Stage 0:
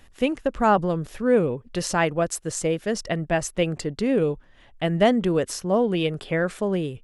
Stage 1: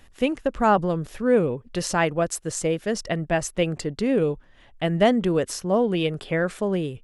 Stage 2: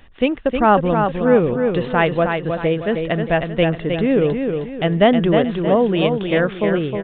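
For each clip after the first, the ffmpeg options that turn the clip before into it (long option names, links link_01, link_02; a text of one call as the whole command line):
ffmpeg -i in.wav -af anull out.wav
ffmpeg -i in.wav -filter_complex "[0:a]asplit=2[link_01][link_02];[link_02]aecho=0:1:313|626|939|1252|1565:0.531|0.207|0.0807|0.0315|0.0123[link_03];[link_01][link_03]amix=inputs=2:normalize=0,aresample=8000,aresample=44100,volume=5dB" out.wav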